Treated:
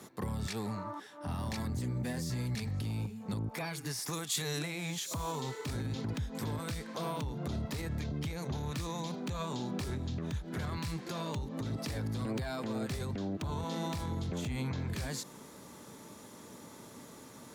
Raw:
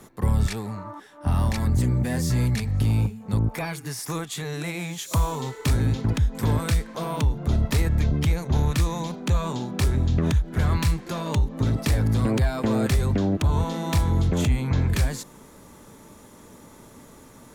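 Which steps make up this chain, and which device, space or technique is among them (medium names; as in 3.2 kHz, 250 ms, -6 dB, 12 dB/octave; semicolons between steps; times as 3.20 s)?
broadcast voice chain (high-pass 110 Hz 12 dB/octave; de-esser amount 60%; compression 3:1, threshold -28 dBFS, peak gain reduction 7 dB; peaking EQ 4.5 kHz +4.5 dB 0.99 oct; peak limiter -25 dBFS, peak gain reduction 8.5 dB); 4.13–4.59 s: treble shelf 4.3 kHz +10.5 dB; trim -3 dB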